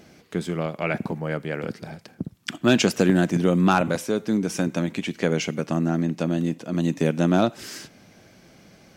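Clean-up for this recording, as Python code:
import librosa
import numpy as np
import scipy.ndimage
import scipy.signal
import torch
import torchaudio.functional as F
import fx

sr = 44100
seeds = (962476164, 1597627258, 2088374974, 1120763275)

y = fx.fix_declip(x, sr, threshold_db=-8.0)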